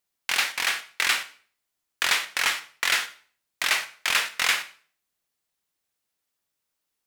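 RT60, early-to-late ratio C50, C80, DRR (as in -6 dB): 0.45 s, 14.0 dB, 18.5 dB, 10.5 dB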